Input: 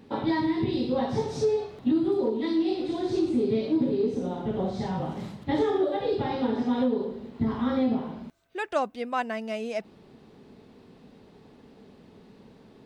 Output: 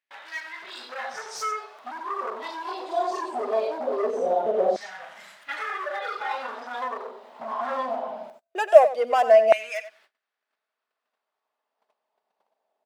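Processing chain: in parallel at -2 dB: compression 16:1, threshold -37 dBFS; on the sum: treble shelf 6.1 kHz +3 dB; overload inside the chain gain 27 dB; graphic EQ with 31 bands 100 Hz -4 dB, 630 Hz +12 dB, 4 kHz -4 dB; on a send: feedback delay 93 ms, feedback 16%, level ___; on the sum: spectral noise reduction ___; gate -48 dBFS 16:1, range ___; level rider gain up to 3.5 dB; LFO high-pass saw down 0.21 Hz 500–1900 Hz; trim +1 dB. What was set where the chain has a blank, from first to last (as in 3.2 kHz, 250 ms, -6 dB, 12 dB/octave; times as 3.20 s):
-9 dB, 8 dB, -27 dB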